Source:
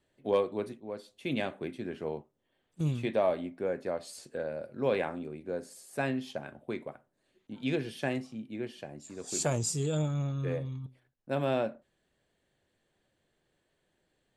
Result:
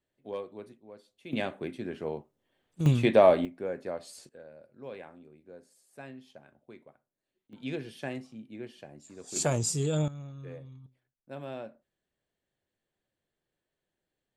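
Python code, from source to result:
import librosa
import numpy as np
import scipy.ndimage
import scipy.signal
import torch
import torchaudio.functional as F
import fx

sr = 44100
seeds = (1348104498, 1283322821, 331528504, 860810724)

y = fx.gain(x, sr, db=fx.steps((0.0, -10.0), (1.33, 1.0), (2.86, 8.5), (3.45, -2.0), (4.29, -14.0), (7.53, -4.5), (9.36, 2.0), (10.08, -10.5)))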